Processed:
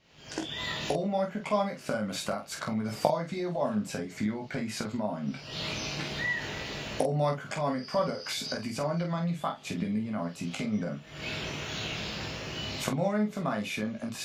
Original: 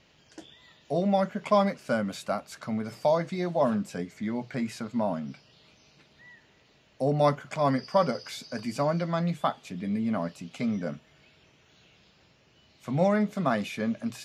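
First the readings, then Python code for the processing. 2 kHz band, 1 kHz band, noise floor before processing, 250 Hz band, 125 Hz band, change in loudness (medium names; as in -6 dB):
+3.5 dB, -3.5 dB, -62 dBFS, -2.5 dB, -1.5 dB, -3.5 dB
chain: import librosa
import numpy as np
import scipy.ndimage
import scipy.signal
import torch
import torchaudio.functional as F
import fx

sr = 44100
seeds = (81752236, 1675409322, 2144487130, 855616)

y = fx.recorder_agc(x, sr, target_db=-19.5, rise_db_per_s=70.0, max_gain_db=30)
y = fx.room_early_taps(y, sr, ms=(19, 47), db=(-5.5, -6.5))
y = y * 10.0 ** (-7.0 / 20.0)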